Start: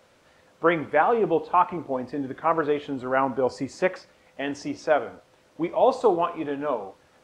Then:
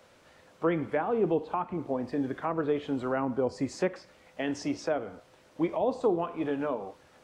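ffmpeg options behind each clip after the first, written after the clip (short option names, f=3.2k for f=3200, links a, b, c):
-filter_complex "[0:a]acrossover=split=380[a][b];[b]acompressor=threshold=-32dB:ratio=4[c];[a][c]amix=inputs=2:normalize=0"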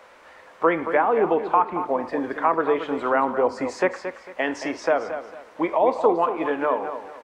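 -af "equalizer=f=125:t=o:w=1:g=-11,equalizer=f=500:t=o:w=1:g=4,equalizer=f=1k:t=o:w=1:g=10,equalizer=f=2k:t=o:w=1:g=8,aecho=1:1:225|450|675:0.316|0.0885|0.0248,volume=2dB"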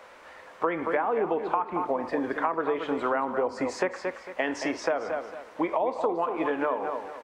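-af "acompressor=threshold=-23dB:ratio=6"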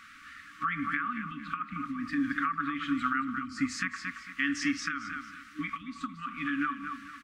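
-af "afftfilt=real='re*(1-between(b*sr/4096,310,1100))':imag='im*(1-between(b*sr/4096,310,1100))':win_size=4096:overlap=0.75,volume=2dB"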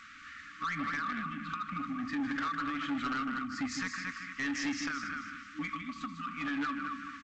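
-af "aecho=1:1:157:0.376,asoftclip=type=tanh:threshold=-29.5dB" -ar 16000 -c:a g722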